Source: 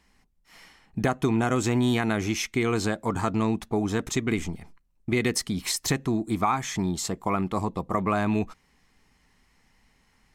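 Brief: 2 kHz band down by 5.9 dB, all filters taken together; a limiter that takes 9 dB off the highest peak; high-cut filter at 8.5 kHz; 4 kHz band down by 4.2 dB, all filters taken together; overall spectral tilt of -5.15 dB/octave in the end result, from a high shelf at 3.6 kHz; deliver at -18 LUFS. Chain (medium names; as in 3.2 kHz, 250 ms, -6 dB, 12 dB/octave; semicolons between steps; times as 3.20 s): low-pass 8.5 kHz; peaking EQ 2 kHz -7 dB; treble shelf 3.6 kHz +4.5 dB; peaking EQ 4 kHz -7 dB; trim +14 dB; peak limiter -8 dBFS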